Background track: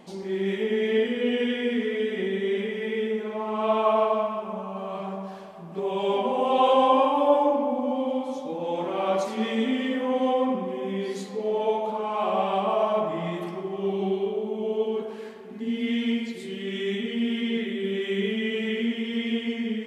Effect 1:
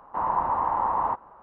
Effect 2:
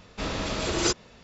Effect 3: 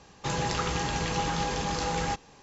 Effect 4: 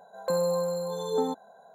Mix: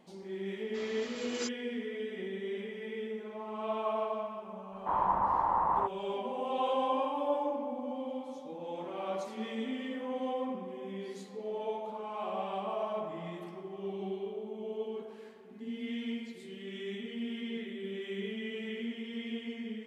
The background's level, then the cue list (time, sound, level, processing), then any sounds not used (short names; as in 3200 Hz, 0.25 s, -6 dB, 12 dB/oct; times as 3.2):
background track -11.5 dB
0.56 add 2 -14 dB + HPF 760 Hz 6 dB/oct
4.72 add 1 -4 dB
not used: 3, 4